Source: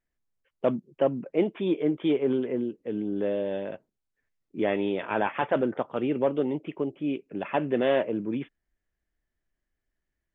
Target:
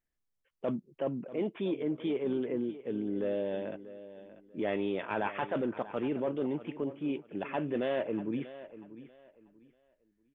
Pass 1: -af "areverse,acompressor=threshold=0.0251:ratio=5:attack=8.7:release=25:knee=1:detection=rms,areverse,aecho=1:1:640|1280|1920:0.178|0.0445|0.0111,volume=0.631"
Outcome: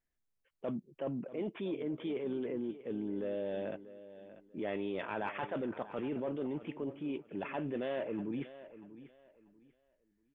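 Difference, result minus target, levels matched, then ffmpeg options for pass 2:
compression: peak gain reduction +5 dB
-af "areverse,acompressor=threshold=0.0531:ratio=5:attack=8.7:release=25:knee=1:detection=rms,areverse,aecho=1:1:640|1280|1920:0.178|0.0445|0.0111,volume=0.631"

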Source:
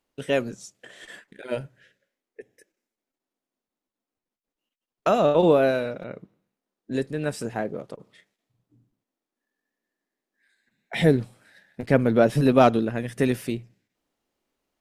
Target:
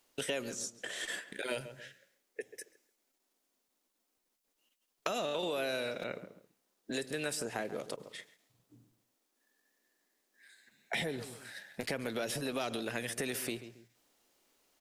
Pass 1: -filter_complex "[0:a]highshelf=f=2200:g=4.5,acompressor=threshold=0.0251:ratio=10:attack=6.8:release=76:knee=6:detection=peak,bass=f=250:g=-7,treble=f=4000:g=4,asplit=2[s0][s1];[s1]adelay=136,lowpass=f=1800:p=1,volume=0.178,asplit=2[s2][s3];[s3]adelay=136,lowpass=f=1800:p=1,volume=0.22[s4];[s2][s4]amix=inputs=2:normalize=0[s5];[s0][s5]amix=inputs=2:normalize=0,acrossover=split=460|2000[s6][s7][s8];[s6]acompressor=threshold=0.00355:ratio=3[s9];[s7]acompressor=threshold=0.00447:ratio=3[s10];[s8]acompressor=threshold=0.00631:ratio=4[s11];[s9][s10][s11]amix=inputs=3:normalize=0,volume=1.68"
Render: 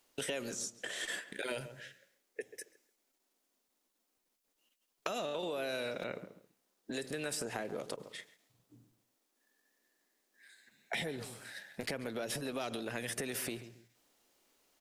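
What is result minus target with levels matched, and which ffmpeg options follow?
compression: peak gain reduction +7 dB
-filter_complex "[0:a]highshelf=f=2200:g=4.5,acompressor=threshold=0.0631:ratio=10:attack=6.8:release=76:knee=6:detection=peak,bass=f=250:g=-7,treble=f=4000:g=4,asplit=2[s0][s1];[s1]adelay=136,lowpass=f=1800:p=1,volume=0.178,asplit=2[s2][s3];[s3]adelay=136,lowpass=f=1800:p=1,volume=0.22[s4];[s2][s4]amix=inputs=2:normalize=0[s5];[s0][s5]amix=inputs=2:normalize=0,acrossover=split=460|2000[s6][s7][s8];[s6]acompressor=threshold=0.00355:ratio=3[s9];[s7]acompressor=threshold=0.00447:ratio=3[s10];[s8]acompressor=threshold=0.00631:ratio=4[s11];[s9][s10][s11]amix=inputs=3:normalize=0,volume=1.68"

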